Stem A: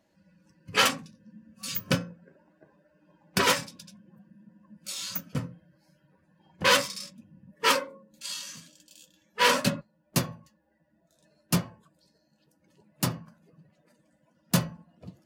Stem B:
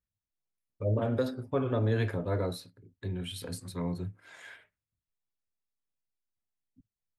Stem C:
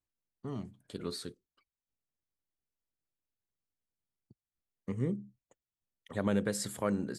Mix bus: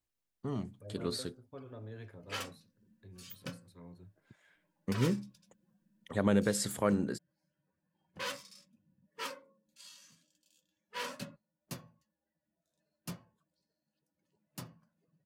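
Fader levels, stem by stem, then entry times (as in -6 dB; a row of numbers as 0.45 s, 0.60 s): -18.0 dB, -19.0 dB, +2.5 dB; 1.55 s, 0.00 s, 0.00 s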